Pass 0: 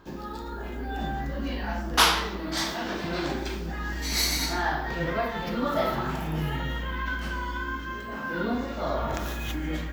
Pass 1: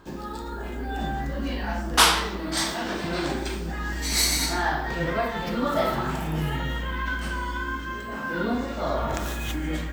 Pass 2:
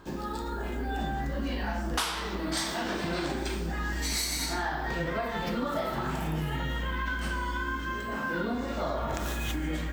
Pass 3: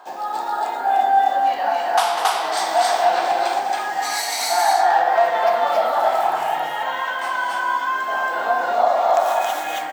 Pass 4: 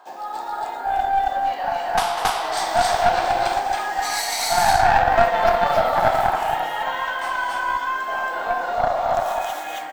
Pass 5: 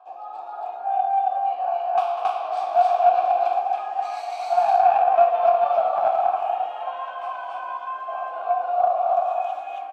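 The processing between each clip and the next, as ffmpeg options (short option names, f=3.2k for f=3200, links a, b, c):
-af "equalizer=f=8.5k:t=o:w=0.31:g=11,volume=2dB"
-af "acompressor=threshold=-27dB:ratio=10"
-filter_complex "[0:a]highpass=f=740:t=q:w=8.4,asplit=2[a][b];[b]aecho=0:1:198.3|274.1:0.316|1[c];[a][c]amix=inputs=2:normalize=0,volume=4dB"
-af "dynaudnorm=f=220:g=21:m=11.5dB,aeval=exprs='0.794*(cos(1*acos(clip(val(0)/0.794,-1,1)))-cos(1*PI/2))+0.316*(cos(2*acos(clip(val(0)/0.794,-1,1)))-cos(2*PI/2))+0.0141*(cos(8*acos(clip(val(0)/0.794,-1,1)))-cos(8*PI/2))':c=same,volume=-4.5dB"
-filter_complex "[0:a]asplit=3[a][b][c];[a]bandpass=f=730:t=q:w=8,volume=0dB[d];[b]bandpass=f=1.09k:t=q:w=8,volume=-6dB[e];[c]bandpass=f=2.44k:t=q:w=8,volume=-9dB[f];[d][e][f]amix=inputs=3:normalize=0,volume=3dB"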